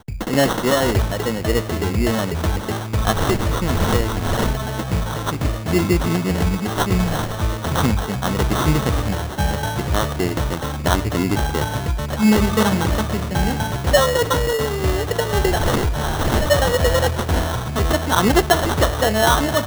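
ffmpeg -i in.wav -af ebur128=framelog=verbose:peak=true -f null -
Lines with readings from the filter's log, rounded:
Integrated loudness:
  I:         -19.7 LUFS
  Threshold: -29.7 LUFS
Loudness range:
  LRA:         2.7 LU
  Threshold: -39.9 LUFS
  LRA low:   -21.0 LUFS
  LRA high:  -18.4 LUFS
True peak:
  Peak:       -2.8 dBFS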